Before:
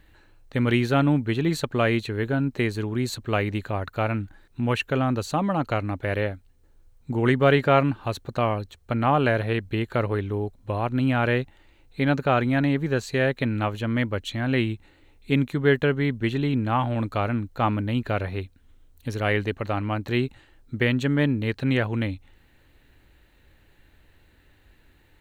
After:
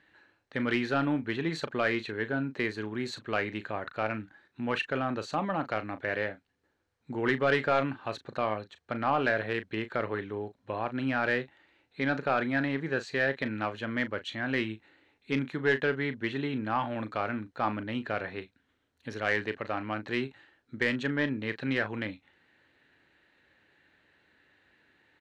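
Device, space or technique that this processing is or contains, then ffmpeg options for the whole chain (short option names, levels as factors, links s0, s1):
intercom: -filter_complex "[0:a]highpass=410,lowpass=4400,bass=f=250:g=13,treble=f=4000:g=3,equalizer=f=1700:t=o:w=0.55:g=6,asoftclip=type=tanh:threshold=0.299,asplit=2[s0][s1];[s1]adelay=37,volume=0.251[s2];[s0][s2]amix=inputs=2:normalize=0,volume=0.562"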